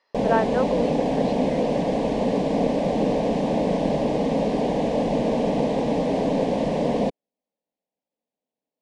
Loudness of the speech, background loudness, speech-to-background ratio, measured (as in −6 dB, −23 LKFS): −28.0 LKFS, −23.0 LKFS, −5.0 dB